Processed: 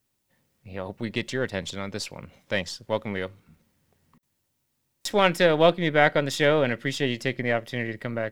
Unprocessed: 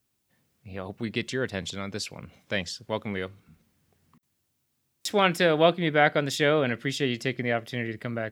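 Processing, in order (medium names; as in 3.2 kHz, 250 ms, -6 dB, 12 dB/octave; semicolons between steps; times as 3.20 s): partial rectifier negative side -3 dB; small resonant body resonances 550/910/1900 Hz, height 6 dB; trim +1.5 dB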